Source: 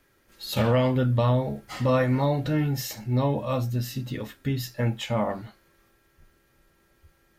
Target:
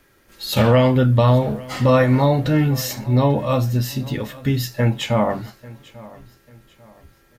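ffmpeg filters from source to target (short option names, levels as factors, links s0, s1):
-af "aecho=1:1:843|1686|2529:0.0891|0.0321|0.0116,volume=2.37"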